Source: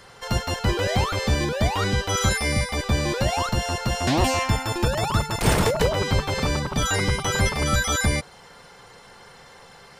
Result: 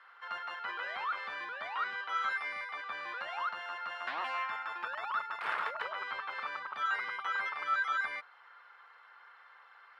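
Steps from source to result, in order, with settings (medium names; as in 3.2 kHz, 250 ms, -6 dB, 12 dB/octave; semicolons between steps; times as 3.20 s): resonant high-pass 1.3 kHz, resonance Q 2.7; distance through air 440 m; trim -9 dB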